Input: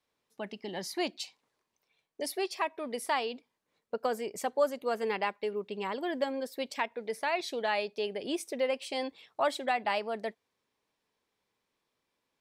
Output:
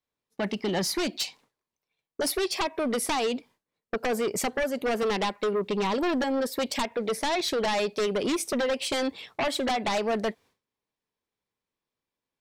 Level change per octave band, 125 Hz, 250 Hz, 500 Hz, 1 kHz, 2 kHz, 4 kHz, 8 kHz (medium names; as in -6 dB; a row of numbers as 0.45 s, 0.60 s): no reading, +9.5 dB, +5.0 dB, +3.0 dB, +4.0 dB, +8.0 dB, +11.0 dB